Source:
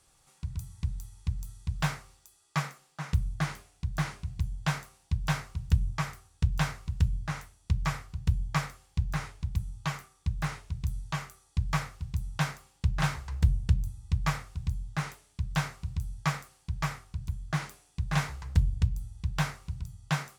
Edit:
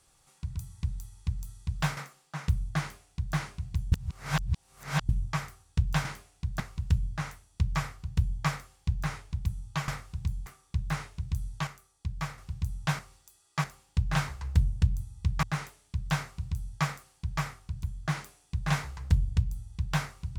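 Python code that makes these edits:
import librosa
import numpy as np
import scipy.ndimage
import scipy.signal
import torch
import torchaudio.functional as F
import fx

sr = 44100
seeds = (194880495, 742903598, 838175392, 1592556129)

y = fx.edit(x, sr, fx.move(start_s=1.97, length_s=0.65, to_s=12.51),
    fx.duplicate(start_s=3.45, length_s=0.55, to_s=6.7),
    fx.reverse_span(start_s=4.57, length_s=1.17),
    fx.clip_gain(start_s=11.19, length_s=0.71, db=-5.5),
    fx.move(start_s=14.3, length_s=0.58, to_s=9.98), tone=tone)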